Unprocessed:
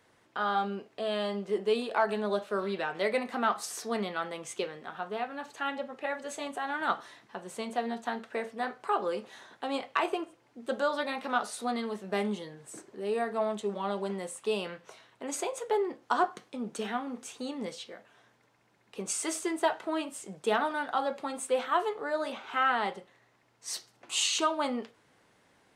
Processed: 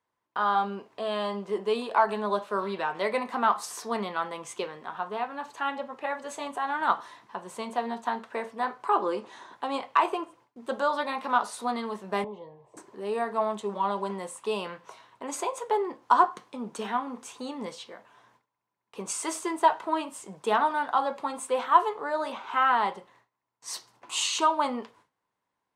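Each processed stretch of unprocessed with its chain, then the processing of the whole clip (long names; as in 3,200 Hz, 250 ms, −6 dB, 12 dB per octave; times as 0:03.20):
0:08.89–0:09.52: low-pass filter 9,900 Hz 24 dB per octave + parametric band 330 Hz +7.5 dB 0.47 octaves
0:12.24–0:12.77: low-pass filter 1,500 Hz + phaser with its sweep stopped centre 600 Hz, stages 4
whole clip: noise gate with hold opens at −53 dBFS; parametric band 1,000 Hz +12 dB 0.42 octaves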